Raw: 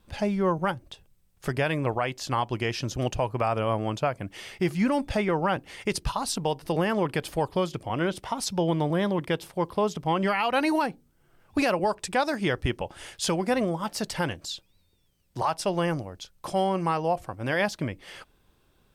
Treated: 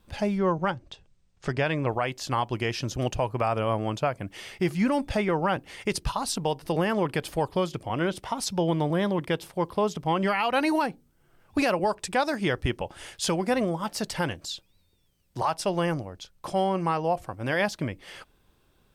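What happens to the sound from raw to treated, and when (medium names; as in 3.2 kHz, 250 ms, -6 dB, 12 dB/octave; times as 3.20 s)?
0.38–1.91 s: low-pass 7.3 kHz 24 dB/octave
15.94–17.12 s: treble shelf 5.5 kHz -4 dB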